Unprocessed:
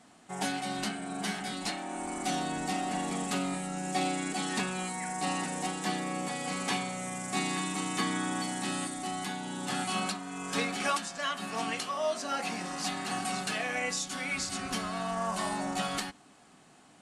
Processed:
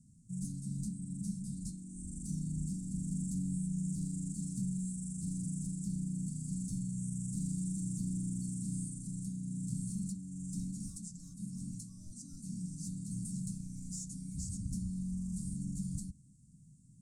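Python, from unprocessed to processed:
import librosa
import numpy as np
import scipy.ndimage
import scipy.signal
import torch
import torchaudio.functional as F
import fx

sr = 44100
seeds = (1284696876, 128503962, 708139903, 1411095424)

p1 = 10.0 ** (-29.0 / 20.0) * (np.abs((x / 10.0 ** (-29.0 / 20.0) + 3.0) % 4.0 - 2.0) - 1.0)
p2 = x + (p1 * 10.0 ** (-3.0 / 20.0))
p3 = scipy.signal.sosfilt(scipy.signal.cheby2(4, 60, [450.0, 3200.0], 'bandstop', fs=sr, output='sos'), p2)
p4 = fx.air_absorb(p3, sr, metres=110.0)
y = p4 * 10.0 ** (7.0 / 20.0)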